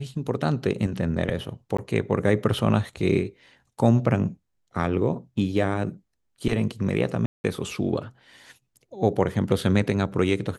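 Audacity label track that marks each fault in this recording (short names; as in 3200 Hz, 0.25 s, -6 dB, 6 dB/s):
1.770000	1.780000	gap 15 ms
7.260000	7.440000	gap 0.18 s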